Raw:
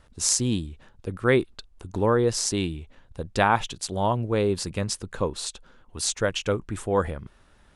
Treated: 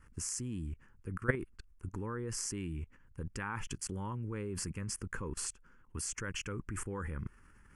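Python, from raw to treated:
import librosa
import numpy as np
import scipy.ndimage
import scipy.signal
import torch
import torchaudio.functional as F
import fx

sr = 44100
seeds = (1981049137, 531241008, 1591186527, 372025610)

y = fx.fixed_phaser(x, sr, hz=1600.0, stages=4)
y = fx.level_steps(y, sr, step_db=21)
y = F.gain(torch.from_numpy(y), 3.5).numpy()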